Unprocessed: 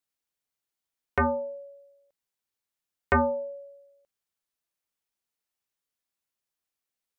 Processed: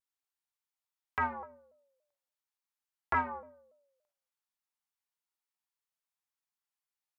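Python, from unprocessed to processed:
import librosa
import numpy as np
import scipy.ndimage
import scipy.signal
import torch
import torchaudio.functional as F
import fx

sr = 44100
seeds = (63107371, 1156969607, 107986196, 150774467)

y = fx.low_shelf_res(x, sr, hz=700.0, db=-6.5, q=3.0)
y = fx.rev_freeverb(y, sr, rt60_s=0.51, hf_ratio=0.7, predelay_ms=5, drr_db=4.0)
y = fx.vibrato_shape(y, sr, shape='saw_down', rate_hz=3.5, depth_cents=160.0)
y = y * 10.0 ** (-8.0 / 20.0)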